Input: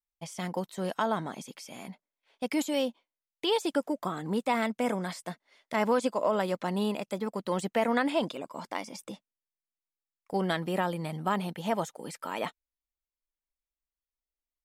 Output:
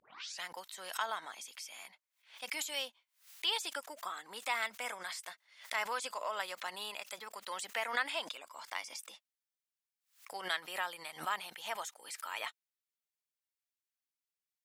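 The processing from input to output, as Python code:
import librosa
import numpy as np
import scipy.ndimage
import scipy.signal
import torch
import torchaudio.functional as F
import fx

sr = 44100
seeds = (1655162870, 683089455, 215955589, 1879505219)

y = fx.tape_start_head(x, sr, length_s=0.43)
y = scipy.signal.sosfilt(scipy.signal.butter(2, 1400.0, 'highpass', fs=sr, output='sos'), y)
y = fx.pre_swell(y, sr, db_per_s=150.0)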